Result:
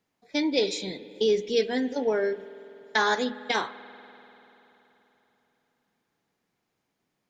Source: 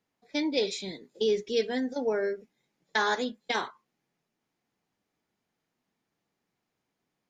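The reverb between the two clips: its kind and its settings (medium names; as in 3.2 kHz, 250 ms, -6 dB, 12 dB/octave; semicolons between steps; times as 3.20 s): spring tank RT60 3.6 s, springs 48 ms, chirp 55 ms, DRR 15 dB; trim +3 dB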